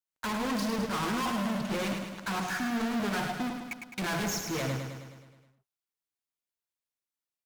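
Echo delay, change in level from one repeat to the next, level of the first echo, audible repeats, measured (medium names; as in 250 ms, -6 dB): 105 ms, -4.5 dB, -6.0 dB, 7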